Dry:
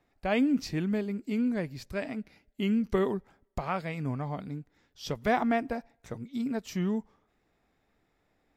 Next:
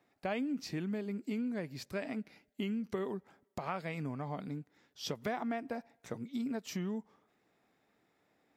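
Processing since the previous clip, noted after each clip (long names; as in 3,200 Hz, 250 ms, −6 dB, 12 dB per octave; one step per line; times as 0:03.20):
downward compressor 6 to 1, threshold −33 dBFS, peak gain reduction 12 dB
high-pass filter 150 Hz 12 dB per octave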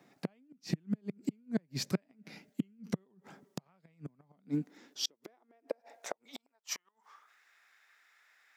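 gate with flip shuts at −30 dBFS, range −40 dB
high-pass filter sweep 160 Hz → 1,600 Hz, 0:04.15–0:07.47
parametric band 6,000 Hz +4.5 dB 0.71 octaves
level +7.5 dB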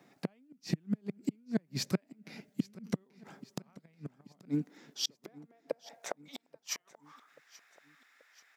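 repeating echo 833 ms, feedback 53%, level −20.5 dB
level +1 dB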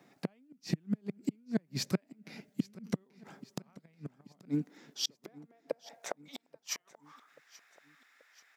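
no processing that can be heard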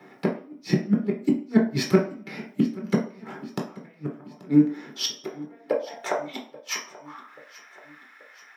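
convolution reverb RT60 0.45 s, pre-delay 3 ms, DRR −2 dB
level +2 dB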